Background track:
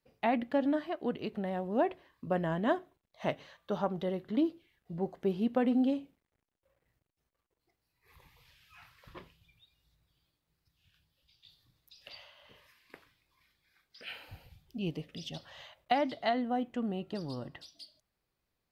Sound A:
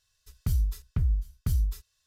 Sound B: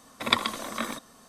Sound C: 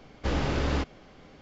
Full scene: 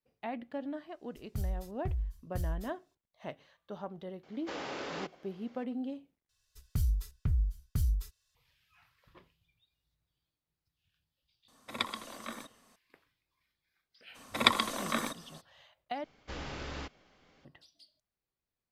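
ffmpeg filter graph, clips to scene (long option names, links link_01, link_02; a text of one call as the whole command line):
ffmpeg -i bed.wav -i cue0.wav -i cue1.wav -i cue2.wav -filter_complex "[1:a]asplit=2[link_01][link_02];[3:a]asplit=2[link_03][link_04];[2:a]asplit=2[link_05][link_06];[0:a]volume=-9.5dB[link_07];[link_03]highpass=380[link_08];[link_04]tiltshelf=frequency=790:gain=-4[link_09];[link_07]asplit=3[link_10][link_11][link_12];[link_10]atrim=end=6.294[link_13];[link_02]atrim=end=2.06,asetpts=PTS-STARTPTS,volume=-4dB[link_14];[link_11]atrim=start=8.346:end=16.044[link_15];[link_09]atrim=end=1.41,asetpts=PTS-STARTPTS,volume=-12dB[link_16];[link_12]atrim=start=17.446[link_17];[link_01]atrim=end=2.06,asetpts=PTS-STARTPTS,volume=-9dB,afade=type=in:duration=0.004:curve=hsin,afade=type=out:start_time=2.056:duration=0.004:curve=hsin,adelay=890[link_18];[link_08]atrim=end=1.41,asetpts=PTS-STARTPTS,volume=-7dB,afade=type=in:duration=0.004:curve=hsin,afade=type=out:start_time=1.406:duration=0.004:curve=hsin,adelay=4230[link_19];[link_05]atrim=end=1.28,asetpts=PTS-STARTPTS,volume=-11dB,afade=type=in:duration=0.004:curve=hsin,afade=type=out:start_time=1.276:duration=0.004:curve=hsin,adelay=11480[link_20];[link_06]atrim=end=1.28,asetpts=PTS-STARTPTS,volume=-1dB,afade=type=in:duration=0.02,afade=type=out:start_time=1.26:duration=0.02,adelay=14140[link_21];[link_13][link_14]acrossfade=duration=0.004:curve1=hsin:curve2=hsin[link_22];[link_22][link_15]acrossfade=duration=0.004:curve1=hsin:curve2=hsin[link_23];[link_23][link_16]acrossfade=duration=0.004:curve1=hsin:curve2=hsin[link_24];[link_24][link_17]acrossfade=duration=0.004:curve1=hsin:curve2=hsin[link_25];[link_25][link_18][link_19][link_20][link_21]amix=inputs=5:normalize=0" out.wav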